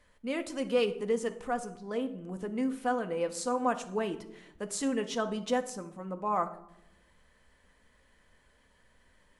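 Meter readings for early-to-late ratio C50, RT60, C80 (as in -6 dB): 13.0 dB, 0.80 s, 16.5 dB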